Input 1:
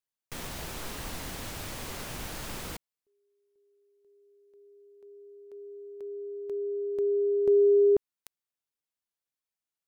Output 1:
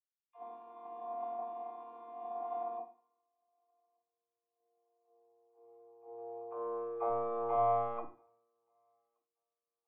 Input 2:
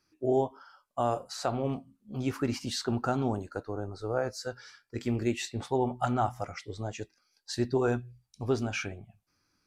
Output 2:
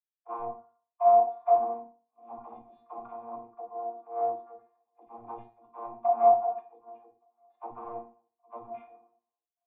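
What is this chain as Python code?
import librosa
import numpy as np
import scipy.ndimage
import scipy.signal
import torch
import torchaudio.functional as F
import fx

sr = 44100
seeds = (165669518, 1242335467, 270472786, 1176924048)

p1 = fx.chord_vocoder(x, sr, chord='bare fifth', root=58)
p2 = fx.high_shelf(p1, sr, hz=2000.0, db=10.0)
p3 = fx.hum_notches(p2, sr, base_hz=60, count=7)
p4 = fx.rider(p3, sr, range_db=4, speed_s=0.5)
p5 = p3 + (p4 * librosa.db_to_amplitude(-1.5))
p6 = fx.tube_stage(p5, sr, drive_db=17.0, bias=0.6)
p7 = 10.0 ** (-24.0 / 20.0) * (np.abs((p6 / 10.0 ** (-24.0 / 20.0) + 3.0) % 4.0 - 2.0) - 1.0)
p8 = fx.quant_float(p7, sr, bits=2)
p9 = fx.formant_cascade(p8, sr, vowel='a')
p10 = fx.dispersion(p9, sr, late='lows', ms=97.0, hz=340.0)
p11 = p10 + fx.echo_thinned(p10, sr, ms=1174, feedback_pct=48, hz=210.0, wet_db=-22, dry=0)
p12 = fx.rev_fdn(p11, sr, rt60_s=0.54, lf_ratio=0.85, hf_ratio=0.9, size_ms=20.0, drr_db=2.0)
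p13 = fx.band_widen(p12, sr, depth_pct=100)
y = p13 * librosa.db_to_amplitude(6.5)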